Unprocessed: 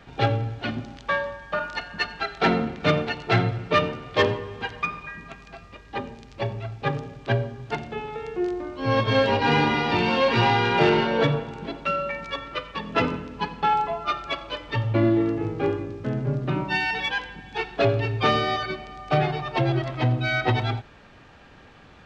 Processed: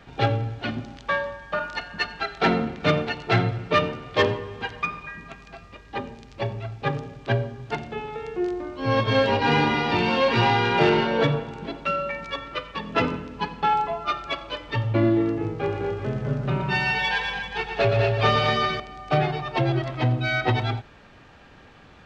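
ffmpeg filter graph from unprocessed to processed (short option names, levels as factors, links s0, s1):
-filter_complex "[0:a]asettb=1/sr,asplit=3[s0][s1][s2];[s0]atrim=end=15.564[s3];[s1]atrim=start=15.56:end=18.8,asetpts=PTS-STARTPTS,afade=t=in:d=0.004:c=qsin,afade=t=out:st=3.236:d=0.004:c=qsin,equalizer=f=300:t=o:w=0.36:g=-12.5,aecho=1:1:118|203|243|388:0.473|0.473|0.422|0.316,atrim=end_sample=142884[s4];[s2]atrim=start=18.796[s5];[s3][s4]acrossfade=d=0.004:c1=hsin:c2=qsin[s6];[s6][s5]acrossfade=d=0.004:c1=qsin:c2=hsin"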